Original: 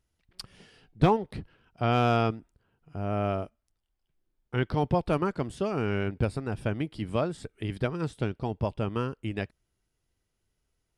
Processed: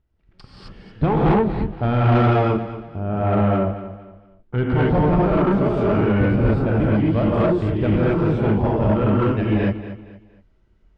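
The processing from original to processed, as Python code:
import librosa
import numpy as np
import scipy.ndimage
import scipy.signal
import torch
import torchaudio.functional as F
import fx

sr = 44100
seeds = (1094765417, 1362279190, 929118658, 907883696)

p1 = fx.rev_gated(x, sr, seeds[0], gate_ms=290, shape='rising', drr_db=-7.0)
p2 = fx.rider(p1, sr, range_db=10, speed_s=0.5)
p3 = p1 + (p2 * librosa.db_to_amplitude(-1.0))
p4 = fx.high_shelf(p3, sr, hz=2400.0, db=-12.0)
p5 = 10.0 ** (-14.0 / 20.0) * np.tanh(p4 / 10.0 ** (-14.0 / 20.0))
p6 = scipy.signal.sosfilt(scipy.signal.butter(2, 4100.0, 'lowpass', fs=sr, output='sos'), p5)
p7 = fx.low_shelf(p6, sr, hz=220.0, db=4.5)
y = p7 + fx.echo_feedback(p7, sr, ms=233, feedback_pct=33, wet_db=-13.0, dry=0)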